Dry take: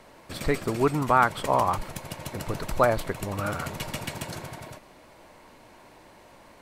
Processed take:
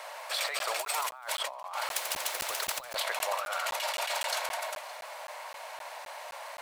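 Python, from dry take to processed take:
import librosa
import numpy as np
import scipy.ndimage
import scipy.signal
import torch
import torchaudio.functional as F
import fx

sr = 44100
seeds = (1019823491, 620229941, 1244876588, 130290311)

y = fx.law_mismatch(x, sr, coded='mu')
y = fx.dynamic_eq(y, sr, hz=3600.0, q=1.1, threshold_db=-44.0, ratio=4.0, max_db=5)
y = scipy.signal.sosfilt(scipy.signal.butter(8, 570.0, 'highpass', fs=sr, output='sos'), y)
y = fx.high_shelf(y, sr, hz=6000.0, db=9.5, at=(0.79, 1.39))
y = y + 10.0 ** (-23.0 / 20.0) * np.pad(y, (int(567 * sr / 1000.0), 0))[:len(y)]
y = fx.over_compress(y, sr, threshold_db=-35.0, ratio=-1.0)
y = fx.buffer_crackle(y, sr, first_s=0.59, period_s=0.26, block=512, kind='zero')
y = fx.spectral_comp(y, sr, ratio=2.0, at=(1.91, 2.95))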